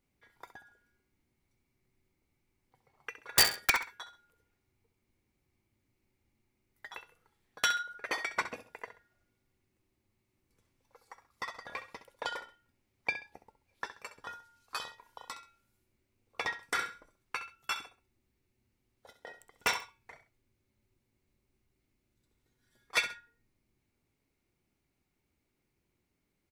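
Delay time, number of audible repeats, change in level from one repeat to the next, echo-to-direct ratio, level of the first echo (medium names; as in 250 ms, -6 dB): 66 ms, 2, -11.0 dB, -11.5 dB, -12.0 dB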